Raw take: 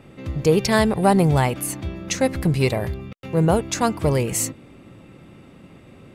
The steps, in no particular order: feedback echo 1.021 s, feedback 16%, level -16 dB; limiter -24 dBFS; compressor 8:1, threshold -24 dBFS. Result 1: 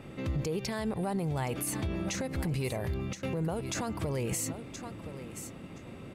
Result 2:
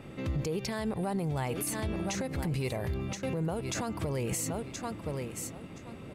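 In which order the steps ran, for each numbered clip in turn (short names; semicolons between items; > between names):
compressor > feedback echo > limiter; feedback echo > compressor > limiter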